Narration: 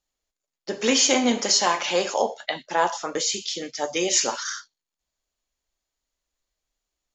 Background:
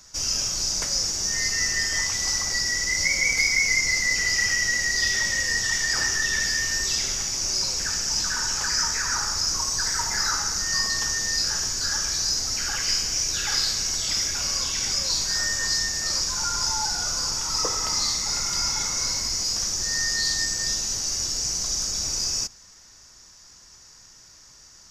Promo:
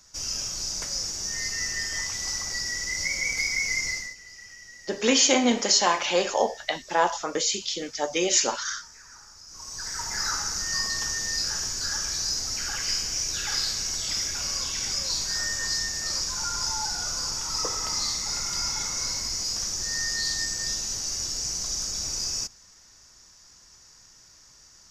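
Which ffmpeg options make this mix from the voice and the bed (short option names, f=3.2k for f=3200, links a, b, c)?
-filter_complex "[0:a]adelay=4200,volume=-0.5dB[a];[1:a]volume=14dB,afade=t=out:st=3.87:d=0.28:silence=0.133352,afade=t=in:st=9.48:d=0.8:silence=0.105925[b];[a][b]amix=inputs=2:normalize=0"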